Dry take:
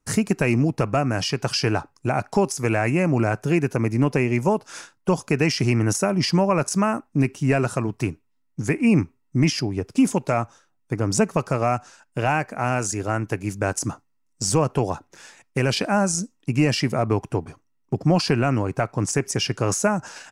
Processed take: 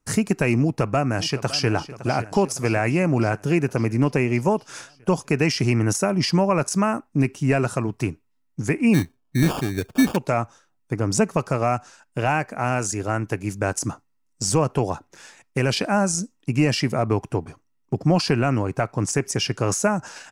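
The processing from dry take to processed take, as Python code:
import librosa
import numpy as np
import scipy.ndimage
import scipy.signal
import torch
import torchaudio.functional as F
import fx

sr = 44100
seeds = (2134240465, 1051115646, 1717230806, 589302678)

y = fx.echo_throw(x, sr, start_s=0.63, length_s=1.05, ms=560, feedback_pct=65, wet_db=-14.5)
y = fx.sample_hold(y, sr, seeds[0], rate_hz=2000.0, jitter_pct=0, at=(8.93, 10.15), fade=0.02)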